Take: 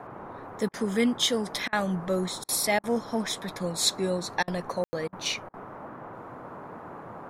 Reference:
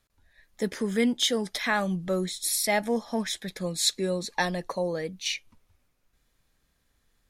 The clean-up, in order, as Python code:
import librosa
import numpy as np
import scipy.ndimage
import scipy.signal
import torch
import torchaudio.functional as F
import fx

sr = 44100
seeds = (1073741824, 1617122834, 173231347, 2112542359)

y = fx.fix_ambience(x, sr, seeds[0], print_start_s=5.48, print_end_s=5.98, start_s=4.84, end_s=4.93)
y = fx.fix_interpolate(y, sr, at_s=(0.69, 1.68, 2.44, 2.79, 4.43, 5.08, 5.49), length_ms=46.0)
y = fx.noise_reduce(y, sr, print_start_s=5.48, print_end_s=5.98, reduce_db=28.0)